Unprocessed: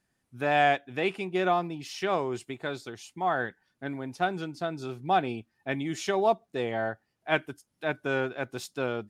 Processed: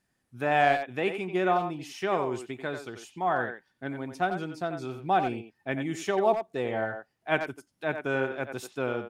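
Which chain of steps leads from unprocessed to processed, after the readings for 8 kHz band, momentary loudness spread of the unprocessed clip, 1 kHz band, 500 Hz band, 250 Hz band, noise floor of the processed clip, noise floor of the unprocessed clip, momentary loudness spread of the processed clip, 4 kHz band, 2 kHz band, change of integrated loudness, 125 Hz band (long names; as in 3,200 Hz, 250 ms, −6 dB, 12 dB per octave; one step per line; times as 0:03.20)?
−2.0 dB, 11 LU, +0.5 dB, +0.5 dB, +0.5 dB, −76 dBFS, −78 dBFS, 11 LU, −3.5 dB, 0.0 dB, +0.5 dB, 0.0 dB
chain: tape wow and flutter 22 cents
dynamic equaliser 4,400 Hz, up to −7 dB, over −52 dBFS, Q 1.5
far-end echo of a speakerphone 90 ms, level −7 dB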